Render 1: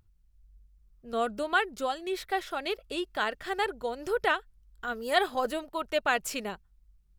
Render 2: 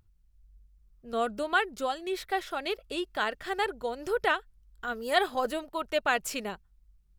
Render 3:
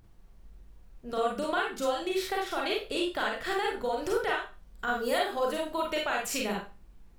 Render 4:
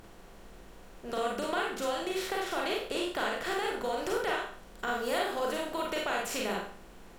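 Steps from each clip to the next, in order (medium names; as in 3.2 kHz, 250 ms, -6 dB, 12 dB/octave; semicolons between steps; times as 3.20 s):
no audible change
compression 6:1, threshold -34 dBFS, peak gain reduction 15 dB; added noise brown -65 dBFS; Schroeder reverb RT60 0.31 s, combs from 33 ms, DRR -2 dB; trim +4 dB
spectral levelling over time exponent 0.6; trim -5.5 dB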